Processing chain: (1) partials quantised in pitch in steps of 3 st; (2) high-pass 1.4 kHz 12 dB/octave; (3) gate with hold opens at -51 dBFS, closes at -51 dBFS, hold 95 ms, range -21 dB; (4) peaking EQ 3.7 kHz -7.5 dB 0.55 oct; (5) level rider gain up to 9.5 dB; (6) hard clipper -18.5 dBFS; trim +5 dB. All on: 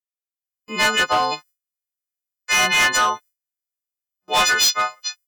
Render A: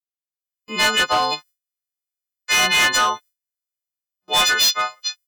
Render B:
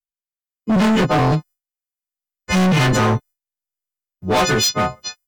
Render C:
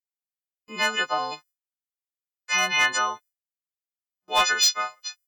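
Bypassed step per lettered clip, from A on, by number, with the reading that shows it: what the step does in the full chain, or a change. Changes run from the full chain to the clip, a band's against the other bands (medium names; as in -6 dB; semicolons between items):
4, 4 kHz band +3.0 dB; 2, 125 Hz band +26.0 dB; 5, crest factor change +5.5 dB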